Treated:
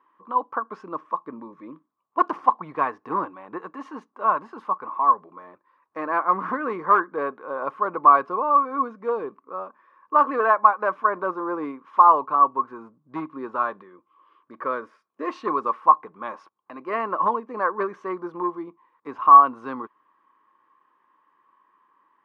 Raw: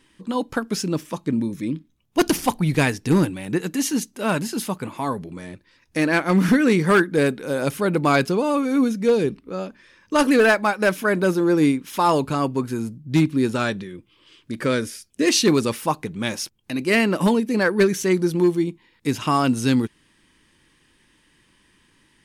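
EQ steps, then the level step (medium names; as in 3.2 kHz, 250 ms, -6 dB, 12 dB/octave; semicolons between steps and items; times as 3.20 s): high-pass 460 Hz 12 dB/octave; resonant low-pass 1.1 kHz, resonance Q 12; -6.5 dB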